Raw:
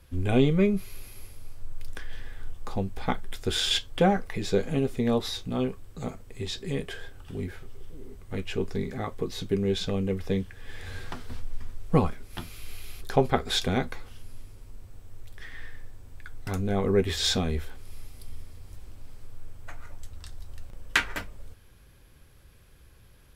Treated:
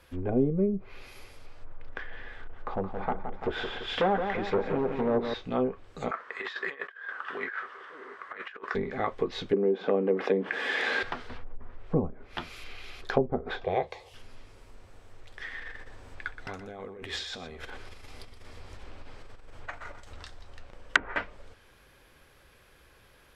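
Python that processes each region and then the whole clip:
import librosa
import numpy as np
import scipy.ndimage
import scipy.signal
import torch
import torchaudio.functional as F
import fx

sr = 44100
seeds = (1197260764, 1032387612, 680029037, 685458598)

y = fx.chain(x, sr, fx.overload_stage(gain_db=24.0),
    fx.echo_crushed(ms=170, feedback_pct=55, bits=9, wet_db=-7), at=(2.36, 5.34))
y = fx.chain(y, sr, fx.bandpass_edges(low_hz=520.0, high_hz=3400.0),
    fx.band_shelf(hz=1400.0, db=13.0, octaves=1.1),
    fx.over_compress(threshold_db=-41.0, ratio=-0.5), at=(6.11, 8.75))
y = fx.chain(y, sr, fx.highpass(hz=220.0, slope=24),
    fx.env_flatten(amount_pct=50), at=(9.53, 11.03))
y = fx.chain(y, sr, fx.highpass(hz=59.0, slope=12),
    fx.fixed_phaser(hz=590.0, stages=4), at=(13.64, 14.14))
y = fx.chain(y, sr, fx.over_compress(threshold_db=-36.0, ratio=-1.0),
    fx.echo_single(ms=122, db=-12.0), at=(15.6, 20.24))
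y = fx.env_lowpass_down(y, sr, base_hz=330.0, full_db=-20.0)
y = fx.curve_eq(y, sr, hz=(120.0, 560.0, 1900.0, 8900.0), db=(0, 13, 14, 6))
y = F.gain(torch.from_numpy(y), -8.0).numpy()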